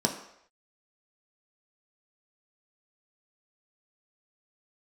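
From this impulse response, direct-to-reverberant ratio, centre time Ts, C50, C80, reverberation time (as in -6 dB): 1.5 dB, 21 ms, 9.0 dB, 11.0 dB, not exponential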